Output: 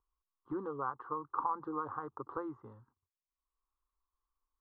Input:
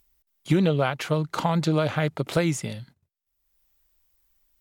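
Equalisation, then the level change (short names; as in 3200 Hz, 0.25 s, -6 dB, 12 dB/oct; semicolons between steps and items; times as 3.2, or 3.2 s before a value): ladder low-pass 1200 Hz, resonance 75%; fixed phaser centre 630 Hz, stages 6; -2.5 dB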